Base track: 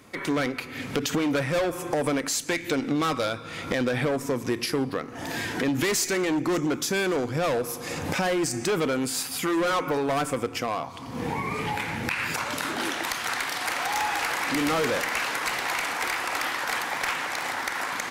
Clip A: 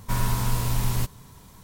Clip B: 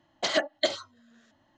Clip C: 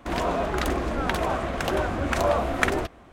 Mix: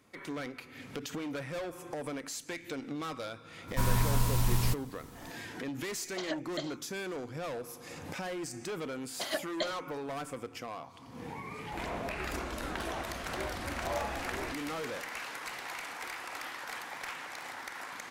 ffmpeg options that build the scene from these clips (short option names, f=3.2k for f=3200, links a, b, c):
-filter_complex "[2:a]asplit=2[a][b];[0:a]volume=-13dB[c];[3:a]alimiter=limit=-10.5dB:level=0:latency=1:release=71[d];[1:a]atrim=end=1.63,asetpts=PTS-STARTPTS,volume=-3.5dB,afade=t=in:d=0.004:c=hsin,afade=t=out:st=1.626:d=0.004:c=hsin,adelay=3680[e];[a]atrim=end=1.57,asetpts=PTS-STARTPTS,volume=-13dB,afade=t=in:d=0.004:c=hsin,afade=t=out:st=1.566:d=0.004:c=hsin,adelay=5940[f];[b]atrim=end=1.57,asetpts=PTS-STARTPTS,volume=-9dB,afade=t=in:d=0.004:c=hsin,afade=t=out:st=1.566:d=0.004:c=hsin,adelay=8970[g];[d]atrim=end=3.12,asetpts=PTS-STARTPTS,volume=-13dB,afade=t=in:d=0.004:c=hsin,afade=t=out:st=3.116:d=0.004:c=hsin,adelay=11660[h];[c][e][f][g][h]amix=inputs=5:normalize=0"